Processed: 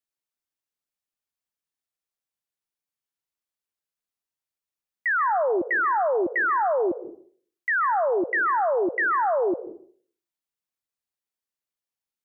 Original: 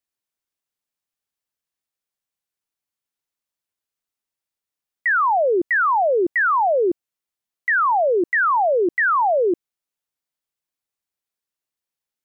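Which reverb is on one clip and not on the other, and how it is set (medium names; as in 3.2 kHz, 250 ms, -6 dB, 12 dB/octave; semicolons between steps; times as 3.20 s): plate-style reverb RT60 0.54 s, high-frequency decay 0.55×, pre-delay 120 ms, DRR 11.5 dB; trim -5 dB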